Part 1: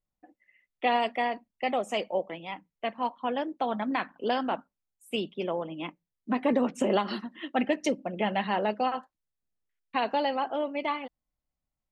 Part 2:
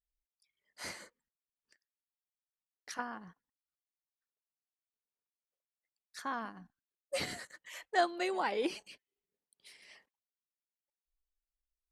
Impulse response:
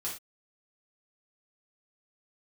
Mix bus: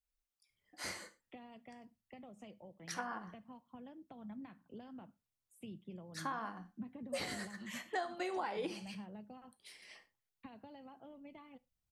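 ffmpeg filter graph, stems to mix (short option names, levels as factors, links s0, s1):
-filter_complex "[0:a]acompressor=threshold=0.0224:ratio=3,equalizer=f=110:w=0.86:g=14,acrossover=split=200[s0][s1];[s1]acompressor=threshold=0.00126:ratio=2[s2];[s0][s2]amix=inputs=2:normalize=0,adelay=500,volume=0.355,asplit=2[s3][s4];[s4]volume=0.112[s5];[1:a]adynamicequalizer=threshold=0.00708:dfrequency=890:dqfactor=0.95:tfrequency=890:tqfactor=0.95:attack=5:release=100:ratio=0.375:range=2:mode=boostabove:tftype=bell,volume=0.841,asplit=2[s6][s7];[s7]volume=0.447[s8];[2:a]atrim=start_sample=2205[s9];[s5][s8]amix=inputs=2:normalize=0[s10];[s10][s9]afir=irnorm=-1:irlink=0[s11];[s3][s6][s11]amix=inputs=3:normalize=0,acompressor=threshold=0.0158:ratio=6"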